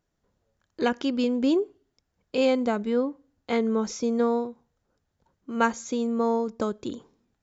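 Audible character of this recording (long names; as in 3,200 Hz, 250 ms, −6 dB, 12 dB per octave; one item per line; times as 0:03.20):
background noise floor −78 dBFS
spectral slope −4.0 dB per octave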